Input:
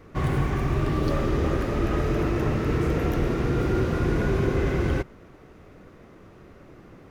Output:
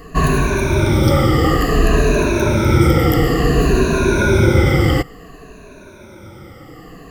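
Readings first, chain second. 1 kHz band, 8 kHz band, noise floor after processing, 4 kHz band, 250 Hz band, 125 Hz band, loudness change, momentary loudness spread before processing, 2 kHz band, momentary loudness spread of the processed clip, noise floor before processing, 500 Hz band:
+11.5 dB, can't be measured, −40 dBFS, +15.5 dB, +9.5 dB, +10.0 dB, +10.0 dB, 2 LU, +13.0 dB, 4 LU, −50 dBFS, +10.0 dB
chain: rippled gain that drifts along the octave scale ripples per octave 1.5, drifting −0.57 Hz, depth 20 dB
high-shelf EQ 3,700 Hz +9.5 dB
level +6.5 dB

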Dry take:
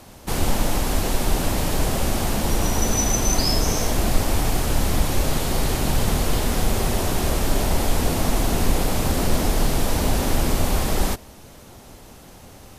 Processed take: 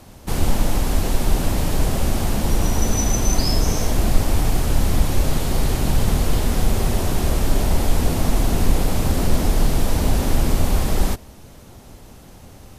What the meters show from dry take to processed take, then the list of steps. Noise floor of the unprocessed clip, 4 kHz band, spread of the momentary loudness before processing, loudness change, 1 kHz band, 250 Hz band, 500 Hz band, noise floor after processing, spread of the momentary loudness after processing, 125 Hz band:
−45 dBFS, −2.0 dB, 3 LU, +1.0 dB, −1.5 dB, +1.0 dB, −0.5 dB, −43 dBFS, 2 LU, +3.0 dB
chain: low-shelf EQ 250 Hz +6 dB
level −2 dB

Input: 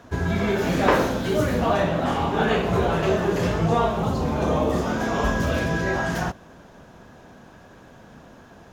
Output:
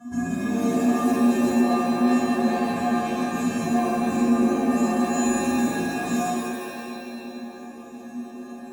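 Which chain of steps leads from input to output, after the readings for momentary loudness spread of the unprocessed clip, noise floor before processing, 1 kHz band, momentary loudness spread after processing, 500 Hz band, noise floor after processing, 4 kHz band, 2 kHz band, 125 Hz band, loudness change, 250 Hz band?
3 LU, −48 dBFS, −1.5 dB, 16 LU, −4.5 dB, −39 dBFS, −4.5 dB, −4.5 dB, −11.0 dB, 0.0 dB, +5.0 dB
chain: in parallel at 0 dB: compressor whose output falls as the input rises −25 dBFS
on the sum: tuned comb filter 240 Hz, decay 0.34 s, harmonics odd, mix 100%
soft clipping −32 dBFS, distortion −11 dB
octave-band graphic EQ 250/500/1,000/2,000/4,000/8,000 Hz +9/−8/+6/−7/−10/+11 dB
reverb with rising layers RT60 2 s, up +7 semitones, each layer −2 dB, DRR 1.5 dB
level +7.5 dB

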